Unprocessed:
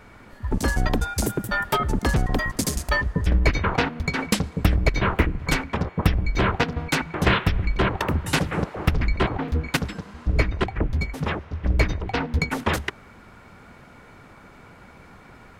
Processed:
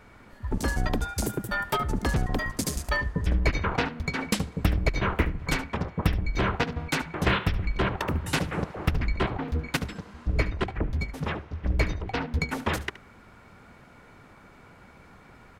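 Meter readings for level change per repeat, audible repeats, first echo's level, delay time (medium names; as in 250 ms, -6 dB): no regular repeats, 1, -16.5 dB, 72 ms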